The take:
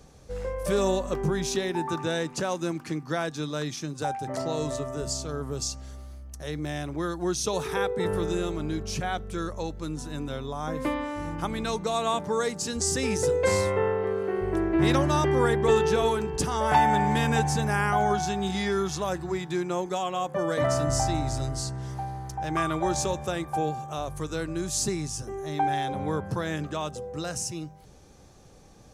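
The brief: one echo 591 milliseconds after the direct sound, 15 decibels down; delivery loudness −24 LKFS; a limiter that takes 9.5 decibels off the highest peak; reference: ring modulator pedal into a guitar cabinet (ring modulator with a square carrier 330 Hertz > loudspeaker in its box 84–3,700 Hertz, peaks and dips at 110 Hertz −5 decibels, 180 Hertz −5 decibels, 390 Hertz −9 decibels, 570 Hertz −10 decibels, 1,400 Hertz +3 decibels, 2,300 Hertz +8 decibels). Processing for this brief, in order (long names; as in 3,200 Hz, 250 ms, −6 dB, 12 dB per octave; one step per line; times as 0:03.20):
brickwall limiter −18.5 dBFS
single-tap delay 591 ms −15 dB
ring modulator with a square carrier 330 Hz
loudspeaker in its box 84–3,700 Hz, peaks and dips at 110 Hz −5 dB, 180 Hz −5 dB, 390 Hz −9 dB, 570 Hz −10 dB, 1,400 Hz +3 dB, 2,300 Hz +8 dB
level +6.5 dB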